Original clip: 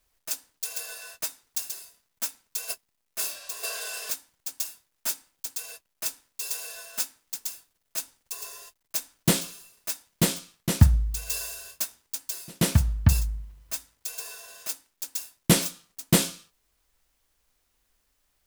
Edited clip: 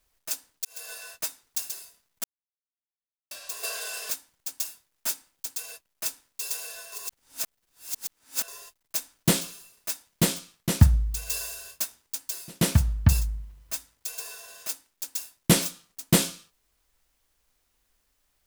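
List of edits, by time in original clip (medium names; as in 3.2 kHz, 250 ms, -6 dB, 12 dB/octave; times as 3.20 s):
0.65–0.93 s: fade in
2.24–3.31 s: mute
6.92–8.48 s: reverse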